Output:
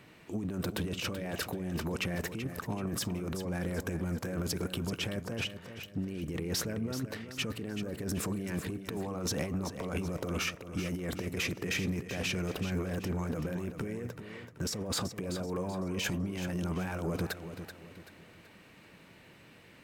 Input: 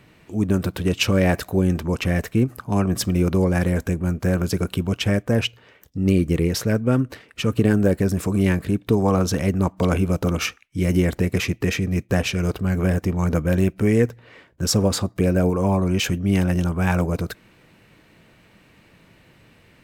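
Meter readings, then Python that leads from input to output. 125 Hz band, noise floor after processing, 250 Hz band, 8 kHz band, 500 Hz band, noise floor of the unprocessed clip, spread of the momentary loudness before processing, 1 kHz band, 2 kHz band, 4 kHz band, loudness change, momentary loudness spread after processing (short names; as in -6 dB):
-15.5 dB, -57 dBFS, -14.5 dB, -8.5 dB, -14.5 dB, -55 dBFS, 5 LU, -12.5 dB, -9.5 dB, -8.5 dB, -14.0 dB, 8 LU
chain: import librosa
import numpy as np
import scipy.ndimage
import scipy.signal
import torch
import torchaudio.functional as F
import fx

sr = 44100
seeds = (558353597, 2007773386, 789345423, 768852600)

y = fx.low_shelf(x, sr, hz=97.0, db=-11.0)
y = fx.over_compress(y, sr, threshold_db=-27.0, ratio=-1.0)
y = 10.0 ** (-17.0 / 20.0) * np.tanh(y / 10.0 ** (-17.0 / 20.0))
y = fx.echo_feedback(y, sr, ms=382, feedback_pct=38, wet_db=-10.0)
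y = y * 10.0 ** (-7.0 / 20.0)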